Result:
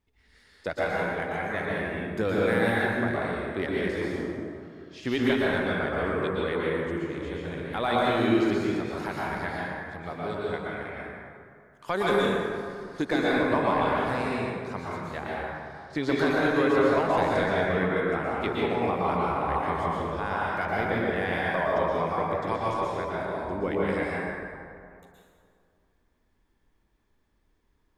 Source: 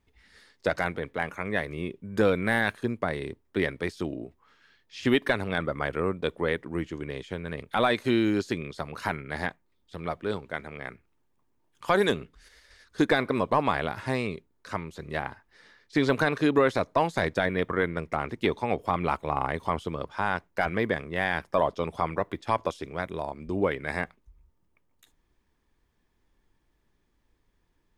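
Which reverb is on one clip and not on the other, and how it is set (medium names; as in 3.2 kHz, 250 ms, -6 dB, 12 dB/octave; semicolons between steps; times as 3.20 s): plate-style reverb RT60 2.3 s, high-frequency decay 0.5×, pre-delay 105 ms, DRR -6 dB; trim -6 dB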